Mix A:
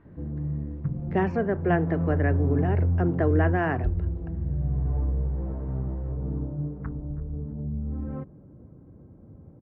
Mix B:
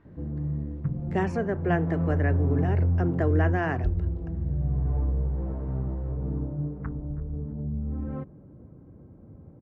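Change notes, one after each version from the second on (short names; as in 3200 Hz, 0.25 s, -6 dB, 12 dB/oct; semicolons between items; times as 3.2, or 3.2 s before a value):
speech -3.0 dB; master: remove air absorption 230 m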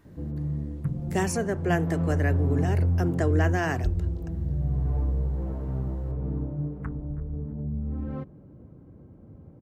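master: remove LPF 2200 Hz 12 dB/oct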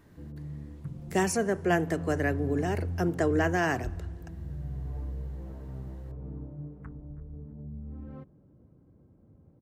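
background -10.0 dB; reverb: on, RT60 2.3 s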